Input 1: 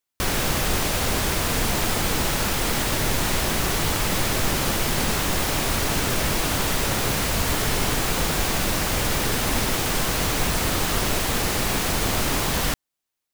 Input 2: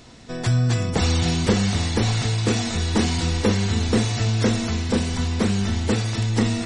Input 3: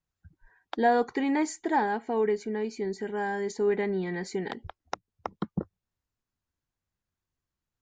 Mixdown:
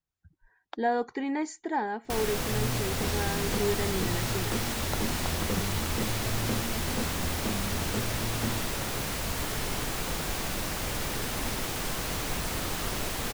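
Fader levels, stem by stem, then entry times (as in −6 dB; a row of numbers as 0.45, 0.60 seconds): −9.0, −13.0, −4.0 decibels; 1.90, 2.05, 0.00 seconds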